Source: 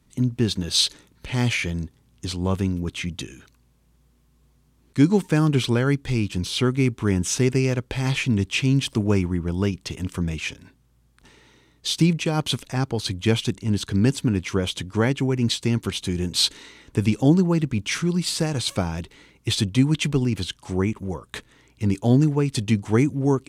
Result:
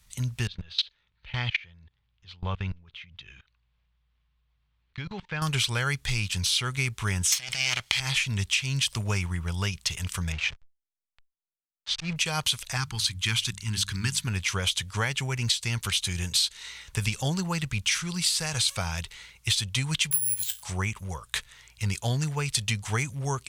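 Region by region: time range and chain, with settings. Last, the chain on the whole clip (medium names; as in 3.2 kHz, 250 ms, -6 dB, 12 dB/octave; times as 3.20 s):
0.47–5.42 s: low-pass 3.6 kHz 24 dB/octave + level held to a coarse grid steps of 24 dB
7.32–8.00 s: comb filter that takes the minimum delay 0.93 ms + compressor with a negative ratio -23 dBFS, ratio -0.5 + frequency weighting D
10.32–12.16 s: slow attack 119 ms + hysteresis with a dead band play -31.5 dBFS + distance through air 130 m
12.77–14.27 s: Chebyshev band-stop 330–1000 Hz + hum notches 50/100/150/200 Hz
20.11–20.63 s: feedback comb 57 Hz, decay 0.19 s, mix 80% + careless resampling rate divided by 4×, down none, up zero stuff
whole clip: amplifier tone stack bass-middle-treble 10-0-10; compression 10:1, threshold -31 dBFS; trim +9 dB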